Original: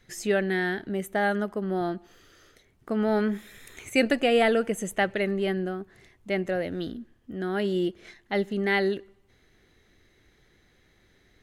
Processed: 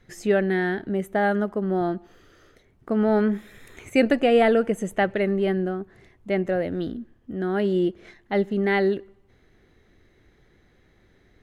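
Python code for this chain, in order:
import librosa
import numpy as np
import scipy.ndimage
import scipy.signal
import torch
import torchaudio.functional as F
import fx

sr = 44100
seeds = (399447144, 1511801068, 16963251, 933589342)

y = fx.high_shelf(x, sr, hz=2200.0, db=-10.5)
y = F.gain(torch.from_numpy(y), 4.5).numpy()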